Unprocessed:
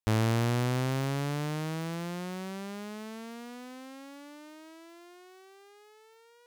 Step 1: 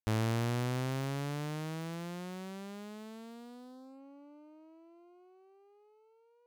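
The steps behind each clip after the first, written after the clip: Wiener smoothing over 25 samples; gain -5 dB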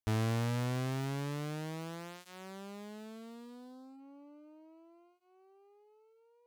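notch comb 180 Hz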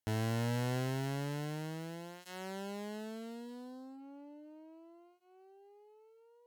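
one-sided clip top -39 dBFS, bottom -32.5 dBFS; added harmonics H 3 -19 dB, 8 -30 dB, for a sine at -31.5 dBFS; notch comb 1200 Hz; gain +7 dB

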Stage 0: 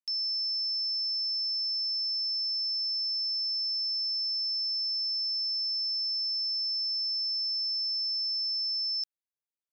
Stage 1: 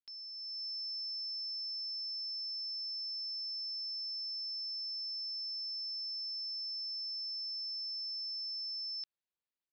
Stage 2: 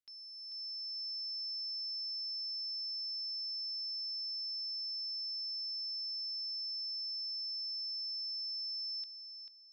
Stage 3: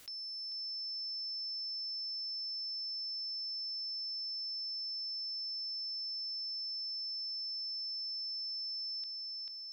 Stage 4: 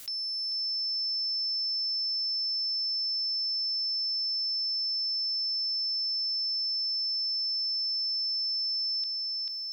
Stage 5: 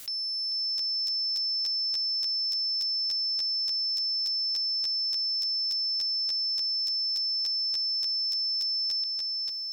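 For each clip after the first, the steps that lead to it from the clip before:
steep low-pass 4900 Hz 72 dB/oct; AGC gain up to 7 dB; gain -7 dB
added harmonics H 8 -44 dB, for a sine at -32.5 dBFS; darkening echo 0.441 s, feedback 49%, low-pass 4700 Hz, level -5 dB; gain -3.5 dB
fast leveller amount 70%
high shelf 4200 Hz +9 dB; gain +4 dB
crackling interface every 0.29 s, samples 512, repeat, from 0.77; gain +1.5 dB

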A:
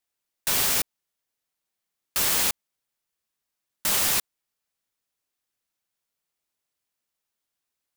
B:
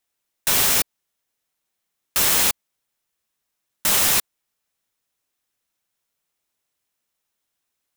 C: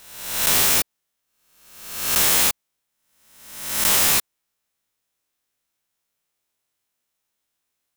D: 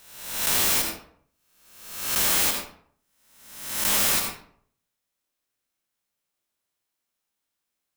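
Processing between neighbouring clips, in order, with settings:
notch 4600 Hz, Q 20; gain +5 dB
spectral swells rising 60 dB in 0.91 s; gain -2 dB
reverb RT60 0.60 s, pre-delay 70 ms, DRR 3 dB; gain -5.5 dB

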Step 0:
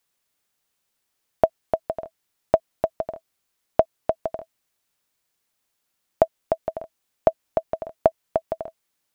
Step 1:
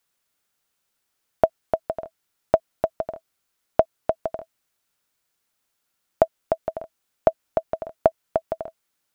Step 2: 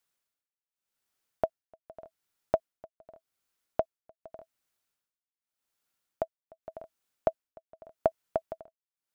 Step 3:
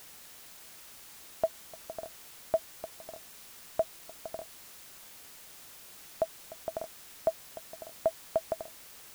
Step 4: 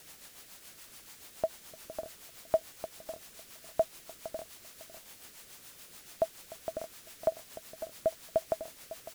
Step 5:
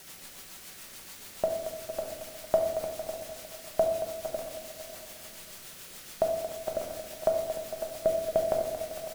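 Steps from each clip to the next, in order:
bell 1400 Hz +4.5 dB 0.23 oct
tremolo 0.85 Hz, depth 97%; gain -6 dB
reverse; compressor, threshold -33 dBFS, peak gain reduction 14 dB; reverse; added noise white -58 dBFS; gain +7 dB
echo 0.553 s -13 dB; rotary speaker horn 7 Hz; gain +2 dB
feedback echo 0.227 s, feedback 59%, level -11.5 dB; shoebox room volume 420 m³, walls mixed, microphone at 1.1 m; gain +3.5 dB

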